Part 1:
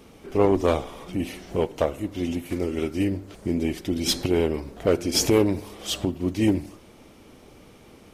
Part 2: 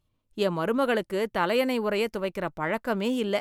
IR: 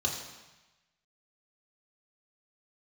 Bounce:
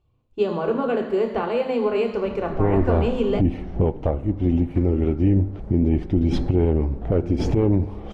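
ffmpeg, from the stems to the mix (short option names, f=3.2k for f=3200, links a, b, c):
-filter_complex "[0:a]lowpass=f=1.7k:p=1,equalizer=f=810:w=5.7:g=6,alimiter=limit=-11.5dB:level=0:latency=1:release=442,adelay=2250,volume=1dB[a];[1:a]lowshelf=f=200:g=-11.5,acompressor=threshold=-28dB:ratio=6,volume=0dB,asplit=2[b][c];[c]volume=-3.5dB[d];[2:a]atrim=start_sample=2205[e];[d][e]afir=irnorm=-1:irlink=0[f];[a][b][f]amix=inputs=3:normalize=0,aemphasis=mode=reproduction:type=riaa,alimiter=limit=-10.5dB:level=0:latency=1:release=58"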